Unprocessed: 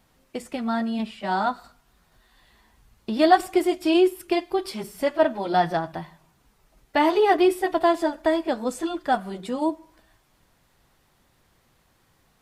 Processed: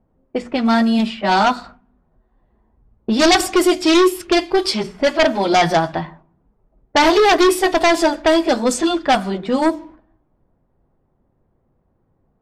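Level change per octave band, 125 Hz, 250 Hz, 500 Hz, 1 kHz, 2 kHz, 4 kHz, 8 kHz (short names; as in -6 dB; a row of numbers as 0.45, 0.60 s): +9.0, +7.5, +6.5, +6.0, +10.0, +13.5, +16.0 dB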